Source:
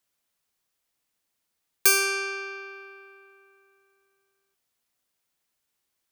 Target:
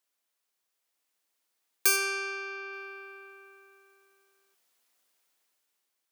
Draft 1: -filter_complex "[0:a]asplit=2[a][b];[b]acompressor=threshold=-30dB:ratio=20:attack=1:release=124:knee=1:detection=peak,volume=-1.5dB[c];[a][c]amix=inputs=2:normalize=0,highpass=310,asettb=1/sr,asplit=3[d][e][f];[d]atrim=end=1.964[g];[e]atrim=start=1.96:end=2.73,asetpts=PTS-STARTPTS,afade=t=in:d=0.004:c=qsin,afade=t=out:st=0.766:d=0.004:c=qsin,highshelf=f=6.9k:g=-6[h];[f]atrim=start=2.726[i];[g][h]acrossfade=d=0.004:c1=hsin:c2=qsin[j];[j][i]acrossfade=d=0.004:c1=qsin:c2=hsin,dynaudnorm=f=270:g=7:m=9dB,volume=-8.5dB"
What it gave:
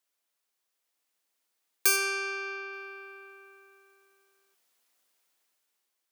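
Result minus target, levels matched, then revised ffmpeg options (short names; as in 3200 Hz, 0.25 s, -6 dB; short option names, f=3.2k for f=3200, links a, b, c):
compressor: peak gain reduction -6 dB
-filter_complex "[0:a]asplit=2[a][b];[b]acompressor=threshold=-36.5dB:ratio=20:attack=1:release=124:knee=1:detection=peak,volume=-1.5dB[c];[a][c]amix=inputs=2:normalize=0,highpass=310,asettb=1/sr,asplit=3[d][e][f];[d]atrim=end=1.964[g];[e]atrim=start=1.96:end=2.73,asetpts=PTS-STARTPTS,afade=t=in:d=0.004:c=qsin,afade=t=out:st=0.766:d=0.004:c=qsin,highshelf=f=6.9k:g=-6[h];[f]atrim=start=2.726[i];[g][h]acrossfade=d=0.004:c1=hsin:c2=qsin[j];[j][i]acrossfade=d=0.004:c1=qsin:c2=hsin,dynaudnorm=f=270:g=7:m=9dB,volume=-8.5dB"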